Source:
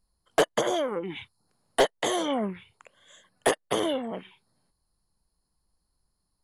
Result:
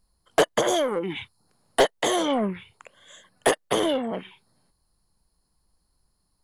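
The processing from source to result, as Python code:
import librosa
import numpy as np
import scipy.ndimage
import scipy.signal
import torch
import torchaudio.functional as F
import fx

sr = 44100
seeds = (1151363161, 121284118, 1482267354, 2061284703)

p1 = fx.high_shelf(x, sr, hz=5300.0, db=9.5, at=(0.68, 1.13))
p2 = 10.0 ** (-29.0 / 20.0) * np.tanh(p1 / 10.0 ** (-29.0 / 20.0))
p3 = p1 + (p2 * 10.0 ** (-5.0 / 20.0))
y = p3 * 10.0 ** (1.5 / 20.0)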